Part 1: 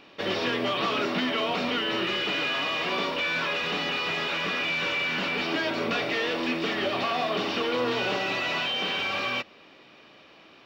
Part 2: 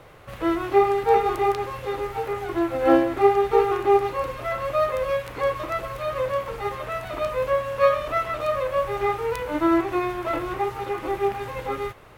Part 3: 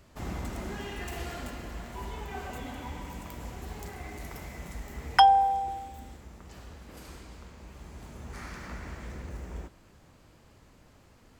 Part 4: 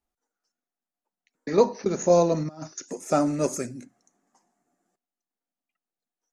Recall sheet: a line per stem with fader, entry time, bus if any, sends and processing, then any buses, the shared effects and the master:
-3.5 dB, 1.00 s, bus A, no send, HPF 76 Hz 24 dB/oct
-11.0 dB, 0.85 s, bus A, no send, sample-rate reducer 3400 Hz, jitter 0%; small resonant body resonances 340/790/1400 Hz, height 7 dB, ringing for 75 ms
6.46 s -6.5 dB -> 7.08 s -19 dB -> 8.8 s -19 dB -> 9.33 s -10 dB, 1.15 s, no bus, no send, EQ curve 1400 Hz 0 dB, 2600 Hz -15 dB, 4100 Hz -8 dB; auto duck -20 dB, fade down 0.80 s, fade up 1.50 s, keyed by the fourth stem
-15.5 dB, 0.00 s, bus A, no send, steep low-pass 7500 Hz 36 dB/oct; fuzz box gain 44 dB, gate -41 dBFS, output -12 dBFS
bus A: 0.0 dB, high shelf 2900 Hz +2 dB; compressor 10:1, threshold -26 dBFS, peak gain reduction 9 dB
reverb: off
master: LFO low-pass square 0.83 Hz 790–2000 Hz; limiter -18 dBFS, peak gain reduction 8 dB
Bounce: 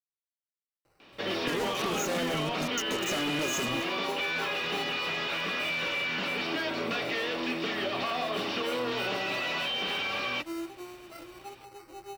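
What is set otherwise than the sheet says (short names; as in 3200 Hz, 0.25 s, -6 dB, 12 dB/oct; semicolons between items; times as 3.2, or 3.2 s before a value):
stem 2 -11.0 dB -> -22.5 dB; stem 3: muted; master: missing LFO low-pass square 0.83 Hz 790–2000 Hz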